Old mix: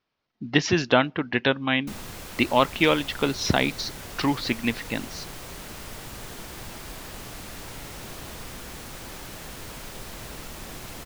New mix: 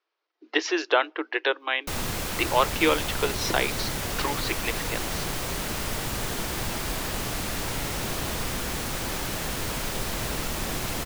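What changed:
speech: add rippled Chebyshev high-pass 310 Hz, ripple 3 dB; background +9.0 dB

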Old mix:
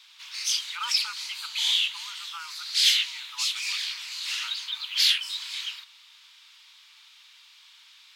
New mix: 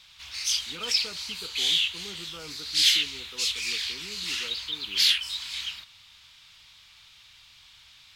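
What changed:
speech -9.5 dB; master: remove brick-wall FIR high-pass 830 Hz

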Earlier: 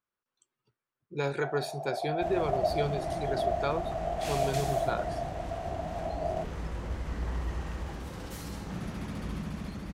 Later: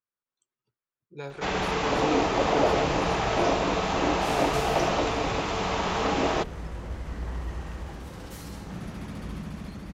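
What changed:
speech -7.0 dB; first sound: remove Butterworth band-pass 670 Hz, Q 5.5

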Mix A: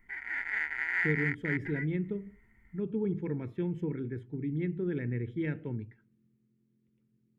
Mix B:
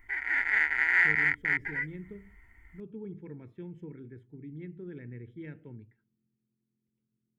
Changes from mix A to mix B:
speech -10.0 dB; background +7.0 dB

